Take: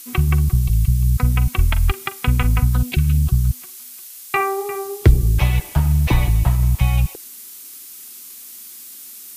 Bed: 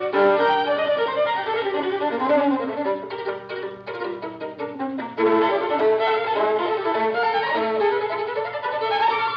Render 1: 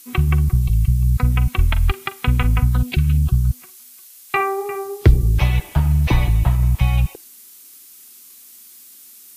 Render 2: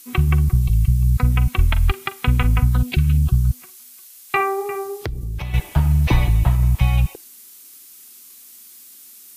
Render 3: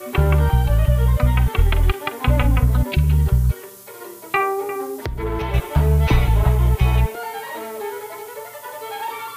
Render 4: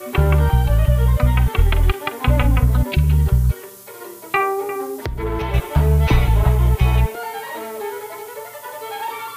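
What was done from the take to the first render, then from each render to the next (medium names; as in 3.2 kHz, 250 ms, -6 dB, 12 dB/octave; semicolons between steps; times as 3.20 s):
noise print and reduce 6 dB
4.89–5.54 s: compression, threshold -24 dBFS
add bed -8.5 dB
trim +1 dB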